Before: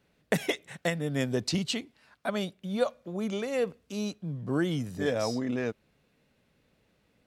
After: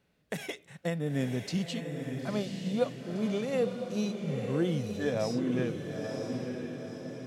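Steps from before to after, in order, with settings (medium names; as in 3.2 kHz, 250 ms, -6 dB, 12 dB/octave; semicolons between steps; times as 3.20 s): harmonic-percussive split percussive -10 dB; echo that smears into a reverb 964 ms, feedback 50%, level -5 dB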